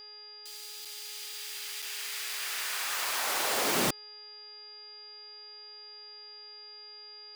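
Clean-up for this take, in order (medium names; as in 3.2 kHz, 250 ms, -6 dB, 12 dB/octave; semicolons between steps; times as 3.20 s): de-hum 419.9 Hz, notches 9; band-stop 4.8 kHz, Q 30; interpolate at 0.85/1.82 s, 4.9 ms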